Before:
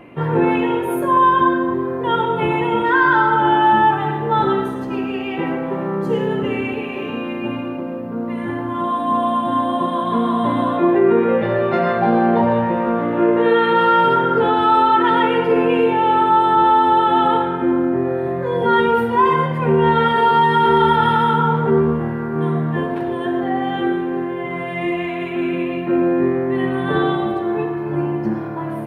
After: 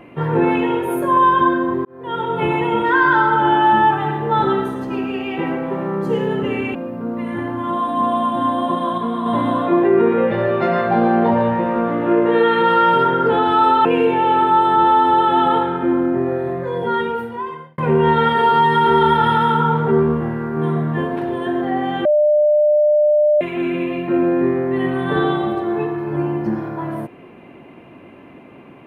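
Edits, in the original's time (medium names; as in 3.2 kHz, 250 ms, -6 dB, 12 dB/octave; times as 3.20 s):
1.85–2.43 s: fade in
6.75–7.86 s: delete
10.09–10.37 s: gain -4 dB
14.96–15.64 s: delete
18.13–19.57 s: fade out
23.84–25.20 s: bleep 599 Hz -10.5 dBFS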